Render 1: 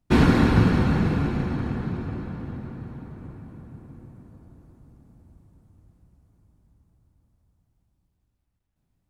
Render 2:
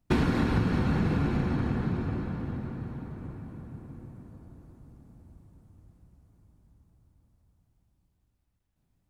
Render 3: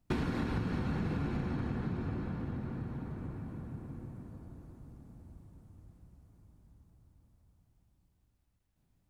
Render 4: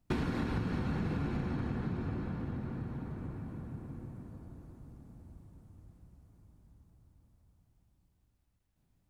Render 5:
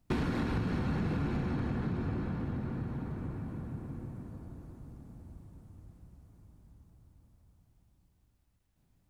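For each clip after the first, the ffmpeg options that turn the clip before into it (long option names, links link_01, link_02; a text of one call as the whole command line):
ffmpeg -i in.wav -af "acompressor=threshold=-22dB:ratio=6" out.wav
ffmpeg -i in.wav -af "acompressor=threshold=-37dB:ratio=2" out.wav
ffmpeg -i in.wav -af anull out.wav
ffmpeg -i in.wav -af "asoftclip=type=tanh:threshold=-26dB,volume=3dB" out.wav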